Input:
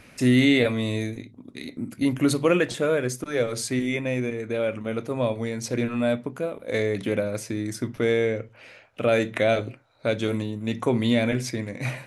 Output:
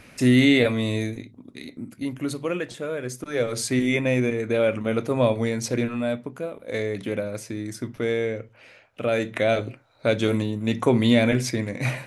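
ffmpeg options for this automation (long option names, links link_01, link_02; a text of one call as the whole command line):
ffmpeg -i in.wav -af "volume=19dB,afade=type=out:start_time=1.07:duration=1.04:silence=0.375837,afade=type=in:start_time=2.94:duration=1.05:silence=0.266073,afade=type=out:start_time=5.48:duration=0.55:silence=0.446684,afade=type=in:start_time=9.13:duration=1.1:silence=0.501187" out.wav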